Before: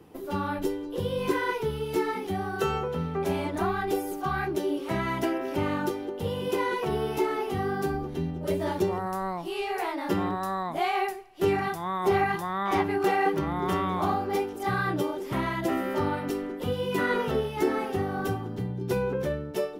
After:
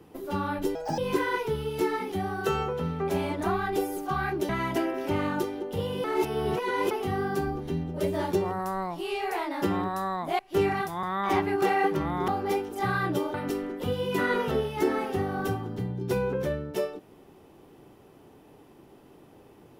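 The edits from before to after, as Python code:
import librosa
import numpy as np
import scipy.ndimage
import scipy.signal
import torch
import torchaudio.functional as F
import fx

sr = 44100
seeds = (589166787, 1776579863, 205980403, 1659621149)

y = fx.edit(x, sr, fx.speed_span(start_s=0.75, length_s=0.38, speed=1.65),
    fx.cut(start_s=4.64, length_s=0.32),
    fx.reverse_span(start_s=6.51, length_s=0.87),
    fx.cut(start_s=10.86, length_s=0.4),
    fx.cut(start_s=11.9, length_s=0.55),
    fx.cut(start_s=13.7, length_s=0.42),
    fx.cut(start_s=15.18, length_s=0.96), tone=tone)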